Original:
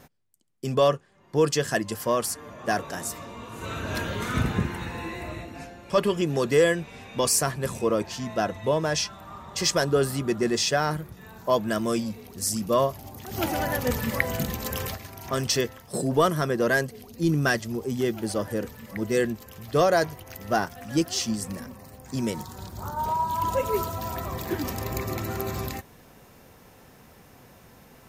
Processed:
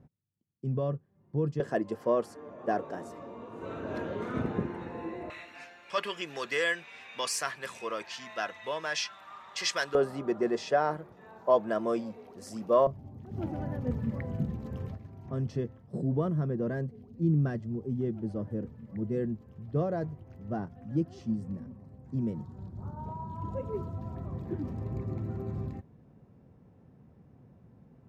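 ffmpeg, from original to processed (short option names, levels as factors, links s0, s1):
-af "asetnsamples=n=441:p=0,asendcmd='1.6 bandpass f 420;5.3 bandpass f 2200;9.95 bandpass f 630;12.87 bandpass f 140',bandpass=f=120:t=q:w=0.97:csg=0"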